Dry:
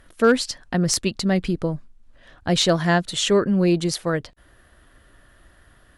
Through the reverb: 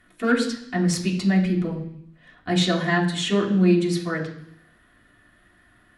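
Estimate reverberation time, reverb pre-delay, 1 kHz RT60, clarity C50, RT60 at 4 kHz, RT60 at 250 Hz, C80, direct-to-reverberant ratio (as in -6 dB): 0.70 s, 3 ms, 0.70 s, 8.0 dB, 0.90 s, 0.85 s, 11.0 dB, -4.0 dB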